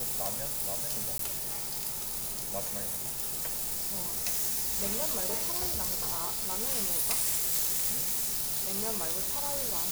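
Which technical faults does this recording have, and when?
0:01.18–0:01.19: drop-out 13 ms

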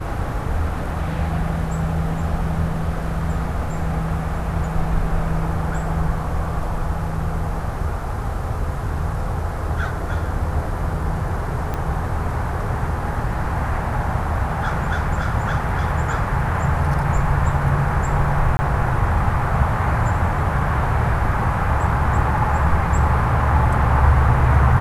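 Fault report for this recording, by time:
0:11.74: click −13 dBFS
0:18.57–0:18.59: drop-out 20 ms

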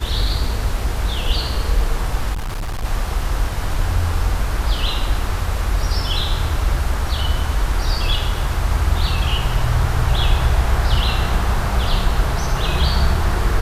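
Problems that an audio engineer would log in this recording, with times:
0:02.33–0:02.85: clipping −21 dBFS

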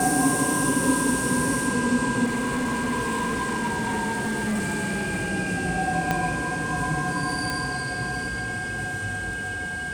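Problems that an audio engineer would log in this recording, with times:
whistle 1,600 Hz −29 dBFS
0:02.24–0:05.30: clipping −22.5 dBFS
0:06.11: click −9 dBFS
0:07.50: click

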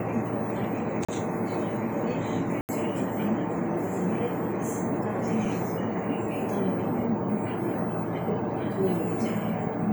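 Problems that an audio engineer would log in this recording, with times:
0:01.05–0:01.08: drop-out 35 ms
0:02.61–0:02.69: drop-out 79 ms
0:05.45: drop-out 4.5 ms

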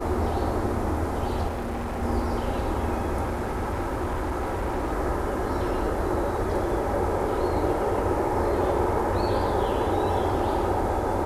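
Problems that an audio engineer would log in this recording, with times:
0:01.47–0:02.03: clipping −27 dBFS
0:03.24–0:04.93: clipping −23.5 dBFS

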